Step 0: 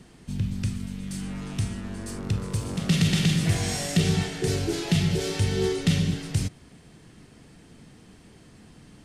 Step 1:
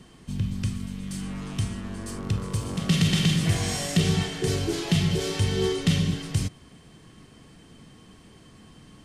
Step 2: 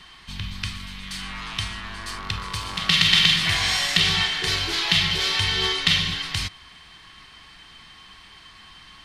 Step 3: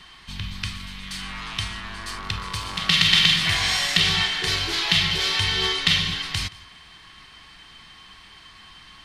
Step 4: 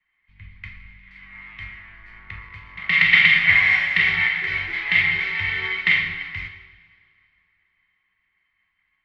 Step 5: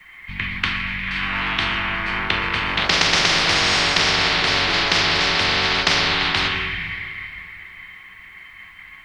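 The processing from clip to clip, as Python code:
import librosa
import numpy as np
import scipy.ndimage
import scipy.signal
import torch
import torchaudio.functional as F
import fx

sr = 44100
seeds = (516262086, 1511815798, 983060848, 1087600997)

y1 = fx.small_body(x, sr, hz=(1100.0, 3100.0), ring_ms=95, db=13)
y2 = fx.graphic_eq(y1, sr, hz=(125, 250, 500, 1000, 2000, 4000, 8000), db=(-11, -10, -11, 7, 7, 11, -6))
y2 = y2 * librosa.db_to_amplitude(3.0)
y3 = y2 + 10.0 ** (-22.5 / 20.0) * np.pad(y2, (int(174 * sr / 1000.0), 0))[:len(y2)]
y4 = fx.lowpass_res(y3, sr, hz=2100.0, q=12.0)
y4 = fx.rev_plate(y4, sr, seeds[0], rt60_s=4.0, hf_ratio=0.9, predelay_ms=0, drr_db=5.5)
y4 = fx.band_widen(y4, sr, depth_pct=100)
y4 = y4 * librosa.db_to_amplitude(-9.5)
y5 = fx.spectral_comp(y4, sr, ratio=10.0)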